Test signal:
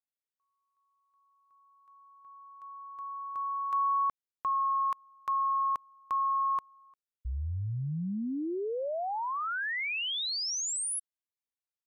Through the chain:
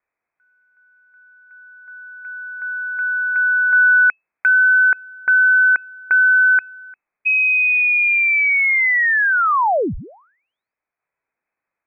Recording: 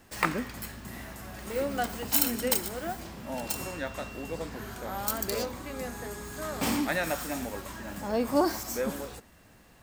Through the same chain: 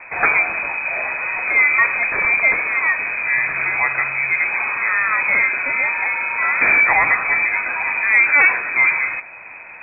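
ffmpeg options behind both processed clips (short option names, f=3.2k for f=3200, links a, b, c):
-filter_complex "[0:a]asplit=2[a][b];[b]acompressor=threshold=-40dB:ratio=6:attack=1.6:release=25:detection=rms,volume=-1dB[c];[a][c]amix=inputs=2:normalize=0,aeval=exprs='0.473*sin(PI/2*3.98*val(0)/0.473)':c=same,lowpass=f=2.2k:t=q:w=0.5098,lowpass=f=2.2k:t=q:w=0.6013,lowpass=f=2.2k:t=q:w=0.9,lowpass=f=2.2k:t=q:w=2.563,afreqshift=-2600,volume=-1dB"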